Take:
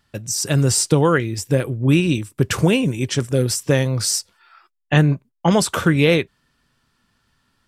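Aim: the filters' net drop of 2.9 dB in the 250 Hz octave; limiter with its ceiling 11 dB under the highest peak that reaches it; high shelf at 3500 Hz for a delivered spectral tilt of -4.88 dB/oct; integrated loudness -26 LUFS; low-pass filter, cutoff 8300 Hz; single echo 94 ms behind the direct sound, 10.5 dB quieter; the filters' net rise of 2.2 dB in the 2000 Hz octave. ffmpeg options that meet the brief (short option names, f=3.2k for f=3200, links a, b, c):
-af "lowpass=8.3k,equalizer=f=250:t=o:g=-4.5,equalizer=f=2k:t=o:g=4.5,highshelf=f=3.5k:g=-5,alimiter=limit=-12dB:level=0:latency=1,aecho=1:1:94:0.299,volume=-3dB"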